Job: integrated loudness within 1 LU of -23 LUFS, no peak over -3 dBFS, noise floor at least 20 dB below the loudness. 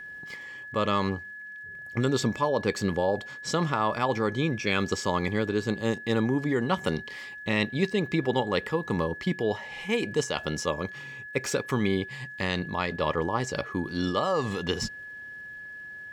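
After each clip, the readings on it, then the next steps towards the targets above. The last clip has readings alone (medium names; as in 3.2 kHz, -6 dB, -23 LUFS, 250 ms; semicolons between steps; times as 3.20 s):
tick rate 40 per s; steady tone 1.7 kHz; tone level -39 dBFS; loudness -28.5 LUFS; peak level -11.0 dBFS; loudness target -23.0 LUFS
-> de-click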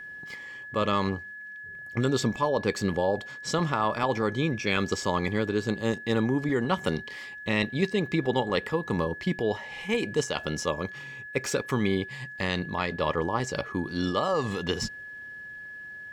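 tick rate 0.56 per s; steady tone 1.7 kHz; tone level -39 dBFS
-> band-stop 1.7 kHz, Q 30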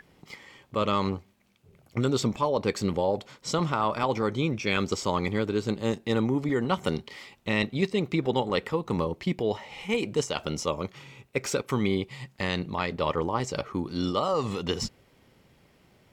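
steady tone not found; loudness -28.5 LUFS; peak level -11.5 dBFS; loudness target -23.0 LUFS
-> trim +5.5 dB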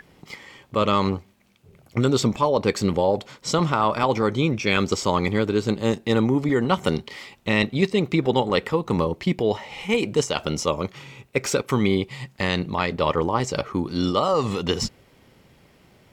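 loudness -23.0 LUFS; peak level -6.0 dBFS; noise floor -57 dBFS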